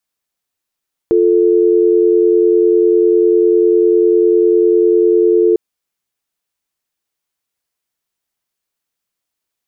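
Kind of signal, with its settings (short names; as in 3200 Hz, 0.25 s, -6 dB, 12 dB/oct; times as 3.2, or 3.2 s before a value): call progress tone dial tone, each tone -10.5 dBFS 4.45 s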